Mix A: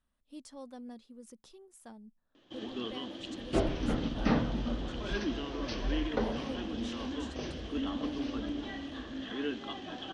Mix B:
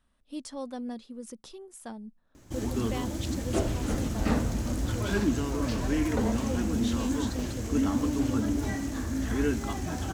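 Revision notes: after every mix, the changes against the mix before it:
speech +9.5 dB
first sound: remove loudspeaker in its box 410–3,600 Hz, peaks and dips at 420 Hz −4 dB, 630 Hz −4 dB, 910 Hz −9 dB, 1,400 Hz −8 dB, 2,200 Hz −10 dB, 3,200 Hz +10 dB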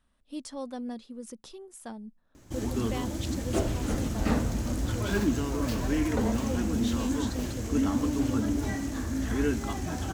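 second sound: remove linear-phase brick-wall low-pass 6,300 Hz

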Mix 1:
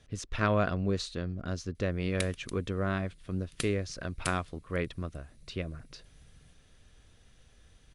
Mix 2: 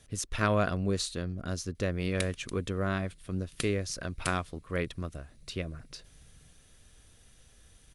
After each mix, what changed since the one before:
speech: remove high-frequency loss of the air 93 metres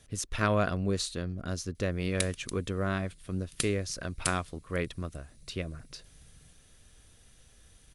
background: add bass and treble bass +1 dB, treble +7 dB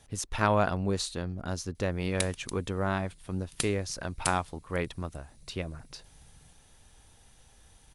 master: add parametric band 860 Hz +14 dB 0.35 octaves

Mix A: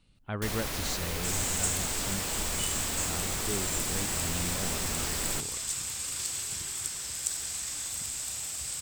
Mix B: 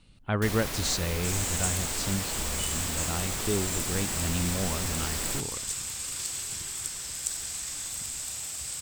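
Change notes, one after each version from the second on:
speech +7.0 dB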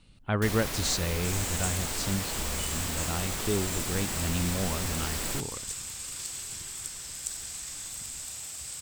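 second sound −3.5 dB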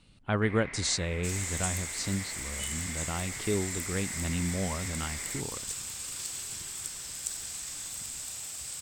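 first sound: add transistor ladder low-pass 2,200 Hz, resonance 80%
master: add low-shelf EQ 63 Hz −6 dB

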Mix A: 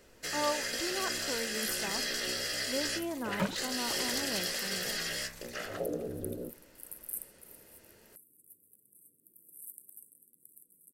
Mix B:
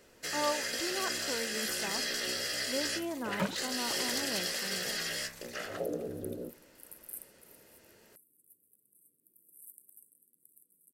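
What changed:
second sound −5.0 dB
master: add low-shelf EQ 65 Hz −10.5 dB

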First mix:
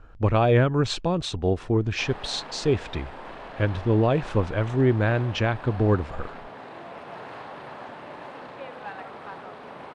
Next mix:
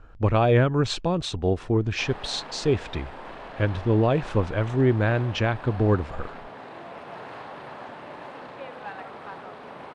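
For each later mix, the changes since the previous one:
nothing changed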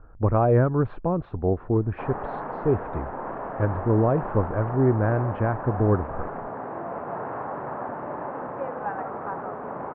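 background +8.0 dB
master: add low-pass filter 1,400 Hz 24 dB per octave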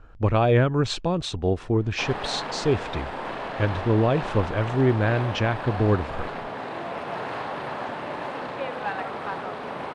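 master: remove low-pass filter 1,400 Hz 24 dB per octave

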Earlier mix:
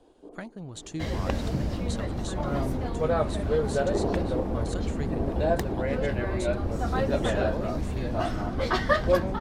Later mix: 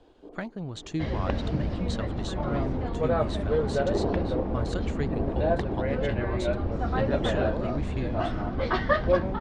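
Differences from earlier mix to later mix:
speech +4.5 dB
second sound: add high-frequency loss of the air 99 metres
master: add low-pass filter 4,500 Hz 12 dB per octave

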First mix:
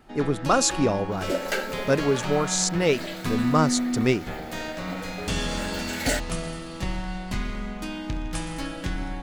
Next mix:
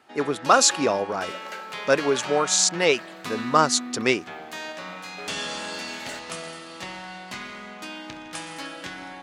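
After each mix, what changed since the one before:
speech +5.0 dB
second sound −12.0 dB
master: add meter weighting curve A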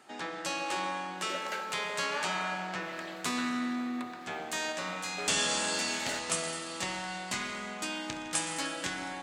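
speech: muted
first sound: add parametric band 7,900 Hz +10.5 dB 0.73 octaves

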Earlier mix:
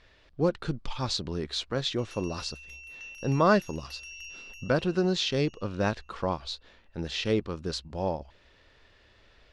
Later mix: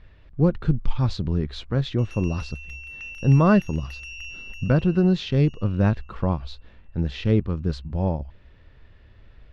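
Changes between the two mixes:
background +9.0 dB
master: add bass and treble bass +14 dB, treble −13 dB

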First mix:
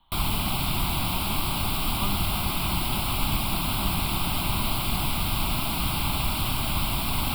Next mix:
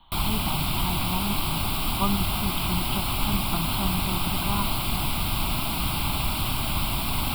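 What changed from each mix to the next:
speech +8.0 dB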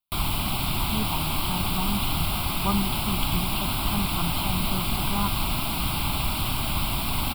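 speech: entry +0.65 s

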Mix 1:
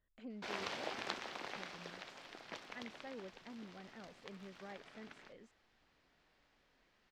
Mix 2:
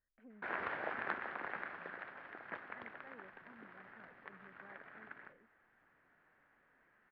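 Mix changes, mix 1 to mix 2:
background +10.0 dB
master: add transistor ladder low-pass 1,900 Hz, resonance 55%

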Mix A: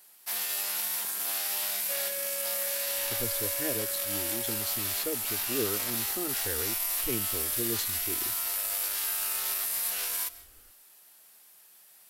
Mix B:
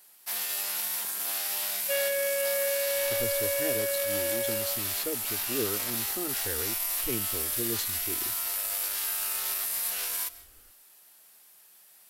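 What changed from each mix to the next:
second sound +11.0 dB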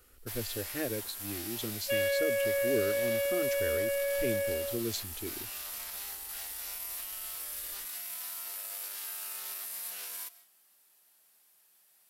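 speech: entry −2.85 s
first sound −9.0 dB

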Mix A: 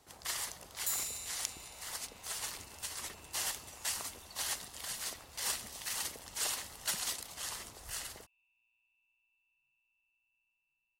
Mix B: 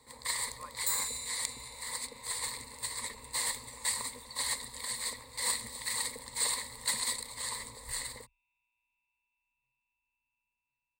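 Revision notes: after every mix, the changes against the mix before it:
speech: unmuted
master: add EQ curve with evenly spaced ripples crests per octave 0.98, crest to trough 17 dB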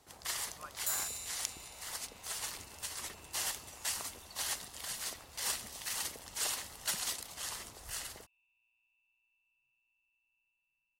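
master: remove EQ curve with evenly spaced ripples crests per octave 0.98, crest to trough 17 dB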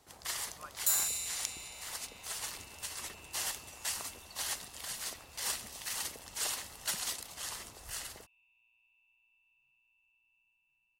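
second sound +6.5 dB

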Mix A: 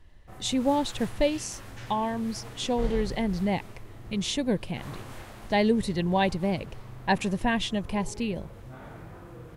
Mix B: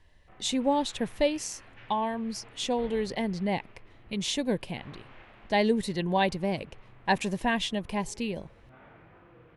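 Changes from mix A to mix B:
background: add transistor ladder low-pass 3,200 Hz, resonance 40%
master: add low-shelf EQ 160 Hz −8 dB

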